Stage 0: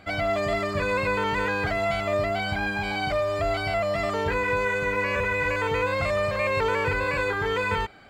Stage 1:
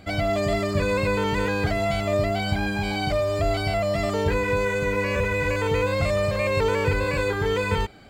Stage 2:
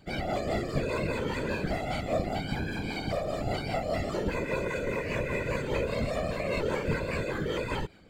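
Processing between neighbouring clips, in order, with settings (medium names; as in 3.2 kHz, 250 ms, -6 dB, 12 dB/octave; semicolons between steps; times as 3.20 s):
peaking EQ 1.4 kHz -10 dB 2.6 oct; trim +7 dB
rotary cabinet horn 5 Hz; whisper effect; trim -5.5 dB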